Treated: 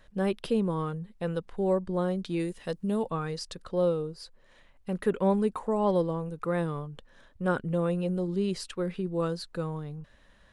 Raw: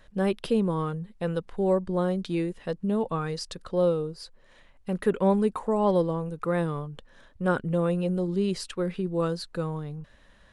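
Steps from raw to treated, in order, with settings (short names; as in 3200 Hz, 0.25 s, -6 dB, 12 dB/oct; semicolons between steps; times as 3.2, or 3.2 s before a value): 2.39–3.07 high shelf 3400 Hz -> 5400 Hz +11 dB; gain -2.5 dB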